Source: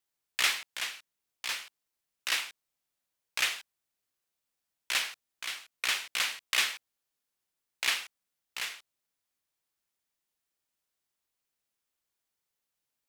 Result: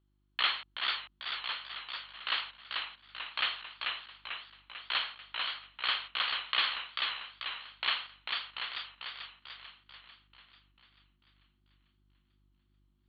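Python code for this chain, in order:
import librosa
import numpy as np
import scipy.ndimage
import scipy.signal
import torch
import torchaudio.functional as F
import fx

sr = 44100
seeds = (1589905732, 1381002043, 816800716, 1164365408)

y = fx.dmg_buzz(x, sr, base_hz=50.0, harmonics=7, level_db=-69.0, tilt_db=-6, odd_only=False)
y = scipy.signal.sosfilt(scipy.signal.cheby1(6, 9, 4400.0, 'lowpass', fs=sr, output='sos'), y)
y = fx.echo_warbled(y, sr, ms=442, feedback_pct=53, rate_hz=2.8, cents=98, wet_db=-4)
y = F.gain(torch.from_numpy(y), 3.5).numpy()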